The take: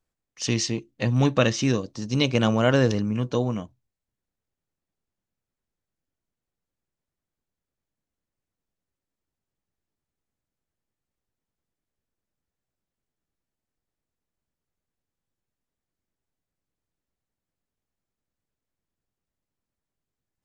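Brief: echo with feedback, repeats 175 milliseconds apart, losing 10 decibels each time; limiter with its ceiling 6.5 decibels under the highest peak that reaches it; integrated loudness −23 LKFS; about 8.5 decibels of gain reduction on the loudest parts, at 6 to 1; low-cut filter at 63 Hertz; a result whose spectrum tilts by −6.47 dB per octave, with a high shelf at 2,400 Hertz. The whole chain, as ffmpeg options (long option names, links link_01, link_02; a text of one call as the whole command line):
ffmpeg -i in.wav -af "highpass=63,highshelf=frequency=2400:gain=-7.5,acompressor=threshold=-24dB:ratio=6,alimiter=limit=-19.5dB:level=0:latency=1,aecho=1:1:175|350|525|700:0.316|0.101|0.0324|0.0104,volume=8.5dB" out.wav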